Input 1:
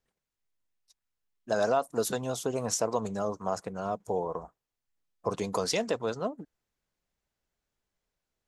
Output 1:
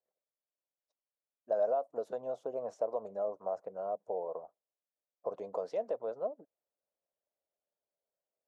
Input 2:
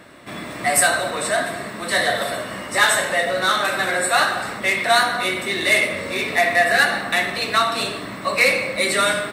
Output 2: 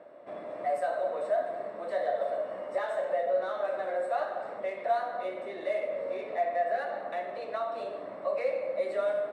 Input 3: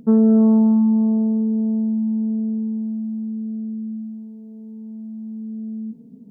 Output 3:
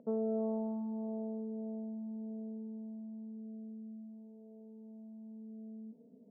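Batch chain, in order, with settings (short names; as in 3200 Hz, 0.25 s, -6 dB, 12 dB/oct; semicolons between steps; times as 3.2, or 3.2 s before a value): compressor 1.5:1, threshold -30 dBFS; band-pass 590 Hz, Q 4; gain +2 dB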